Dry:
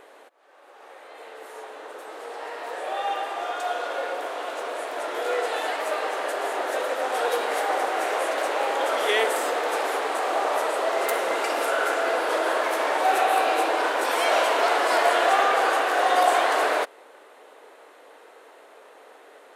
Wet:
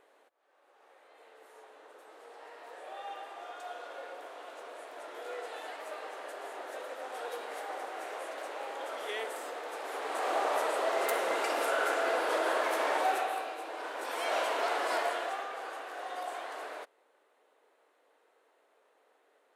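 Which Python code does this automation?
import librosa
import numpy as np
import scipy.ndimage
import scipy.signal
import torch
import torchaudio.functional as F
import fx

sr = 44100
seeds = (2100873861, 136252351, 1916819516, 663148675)

y = fx.gain(x, sr, db=fx.line((9.79, -15.0), (10.28, -6.0), (12.99, -6.0), (13.58, -19.0), (14.36, -10.0), (14.96, -10.0), (15.48, -19.5)))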